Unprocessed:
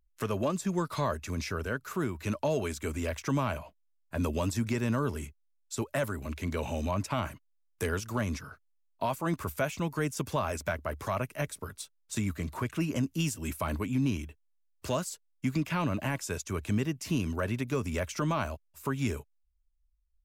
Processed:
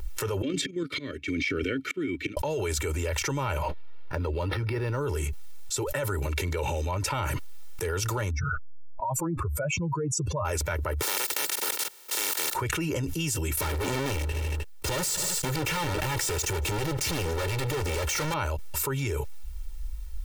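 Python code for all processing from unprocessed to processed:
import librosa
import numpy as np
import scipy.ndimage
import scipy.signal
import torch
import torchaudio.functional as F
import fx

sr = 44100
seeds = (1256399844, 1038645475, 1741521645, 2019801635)

y = fx.chain(x, sr, fx.level_steps(step_db=10),
    fx.auto_swell(attack_ms=745.0),
    fx.vowel_filter(vowel='i'), at=(0.42, 2.37))
y = fx.chain(y, sr, fx.lowpass(hz=7400.0, slope=12),
    fx.resample_linear(factor=6), at=(3.62, 5.01))
y = fx.chain(y, sr, fx.spec_expand(power=2.5),
    fx.lowpass(hz=11000.0, slope=12), at=(8.3, 10.45))
y = fx.spec_flatten(y, sr, power=0.14, at=(11.01, 12.54), fade=0.02)
y = fx.highpass(y, sr, hz=200.0, slope=24, at=(11.01, 12.54), fade=0.02)
y = fx.level_steps(y, sr, step_db=22, at=(11.01, 12.54), fade=0.02)
y = fx.chain(y, sr, fx.leveller(passes=5),
    fx.clip_hard(threshold_db=-30.5),
    fx.echo_feedback(ms=77, feedback_pct=60, wet_db=-23.5), at=(13.57, 18.34))
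y = y + 0.88 * np.pad(y, (int(2.2 * sr / 1000.0), 0))[:len(y)]
y = fx.env_flatten(y, sr, amount_pct=100)
y = y * librosa.db_to_amplitude(-5.5)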